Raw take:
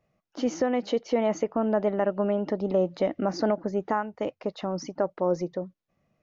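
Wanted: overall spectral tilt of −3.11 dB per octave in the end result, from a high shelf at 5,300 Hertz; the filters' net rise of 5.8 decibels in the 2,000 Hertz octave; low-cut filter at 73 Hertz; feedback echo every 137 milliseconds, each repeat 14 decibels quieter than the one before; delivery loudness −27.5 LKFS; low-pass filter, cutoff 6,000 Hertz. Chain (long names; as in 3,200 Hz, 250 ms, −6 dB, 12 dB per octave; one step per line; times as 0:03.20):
high-pass filter 73 Hz
low-pass filter 6,000 Hz
parametric band 2,000 Hz +8 dB
high-shelf EQ 5,300 Hz −4.5 dB
repeating echo 137 ms, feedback 20%, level −14 dB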